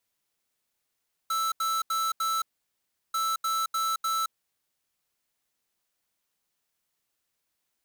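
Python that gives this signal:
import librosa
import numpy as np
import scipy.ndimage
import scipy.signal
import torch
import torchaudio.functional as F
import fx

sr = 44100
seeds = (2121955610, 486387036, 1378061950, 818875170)

y = fx.beep_pattern(sr, wave='square', hz=1320.0, on_s=0.22, off_s=0.08, beeps=4, pause_s=0.72, groups=2, level_db=-27.5)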